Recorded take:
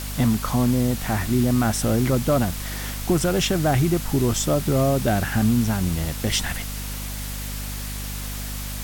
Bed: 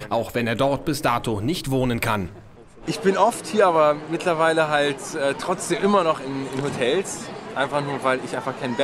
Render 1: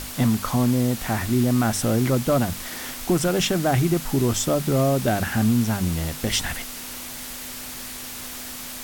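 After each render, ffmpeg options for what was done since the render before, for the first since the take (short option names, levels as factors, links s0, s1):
-af "bandreject=f=50:t=h:w=6,bandreject=f=100:t=h:w=6,bandreject=f=150:t=h:w=6,bandreject=f=200:t=h:w=6"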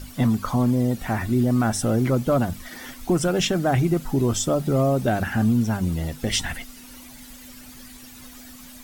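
-af "afftdn=nr=13:nf=-35"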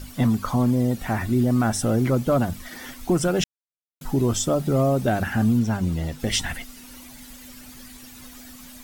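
-filter_complex "[0:a]asettb=1/sr,asplit=3[s0][s1][s2];[s0]atrim=end=5.594[s3];[s1]atrim=start=5.59:end=6.2,asetpts=PTS-STARTPTS,afade=t=in:d=0.004:c=qsin,afade=t=out:st=0.606:d=0.004:c=qsin,equalizer=f=12000:t=o:w=0.87:g=-6.5[s4];[s2]atrim=start=6.196[s5];[s3][s4]acrossfade=d=0.004:c1=hsin:c2=qsin[s6];[s6][s5]acrossfade=d=0.004:c1=qsin:c2=hsin,asplit=3[s7][s8][s9];[s7]atrim=end=3.44,asetpts=PTS-STARTPTS,afade=t=out:st=3.436:d=0.004:c=hsin[s10];[s8]atrim=start=3.44:end=4.01,asetpts=PTS-STARTPTS,volume=0[s11];[s9]atrim=start=4.01,asetpts=PTS-STARTPTS,afade=t=in:d=0.004:c=hsin[s12];[s10][s11][s12]concat=n=3:v=0:a=1"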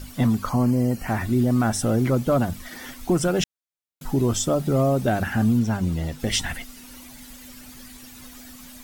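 -filter_complex "[0:a]asettb=1/sr,asplit=3[s0][s1][s2];[s0]atrim=end=0.494[s3];[s1]atrim=start=0.49:end=1.08,asetpts=PTS-STARTPTS,afade=t=in:d=0.004:c=qsin,afade=t=out:st=0.586:d=0.004:c=qsin,asuperstop=centerf=3600:order=12:qfactor=4.3[s4];[s2]atrim=start=1.076[s5];[s3][s4]acrossfade=d=0.004:c1=hsin:c2=qsin[s6];[s6][s5]acrossfade=d=0.004:c1=qsin:c2=hsin"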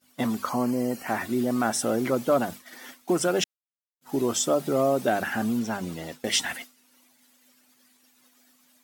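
-af "highpass=300,agate=range=0.0224:threshold=0.0224:ratio=3:detection=peak"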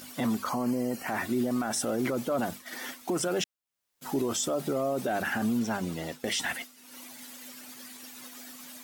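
-af "alimiter=limit=0.0944:level=0:latency=1:release=15,acompressor=mode=upward:threshold=0.0282:ratio=2.5"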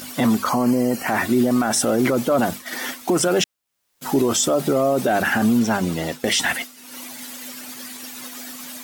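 -af "volume=3.35"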